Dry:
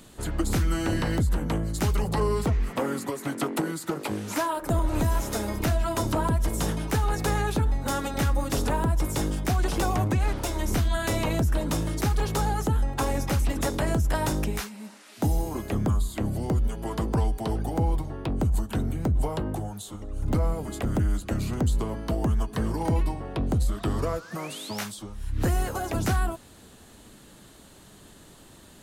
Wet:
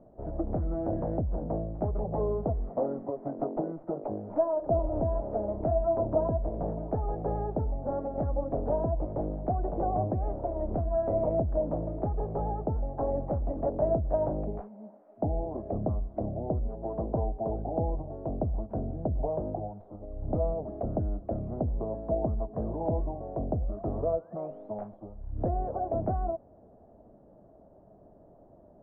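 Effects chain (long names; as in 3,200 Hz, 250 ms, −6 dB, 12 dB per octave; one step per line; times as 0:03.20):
stylus tracing distortion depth 0.11 ms
transistor ladder low-pass 710 Hz, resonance 70%
level +4.5 dB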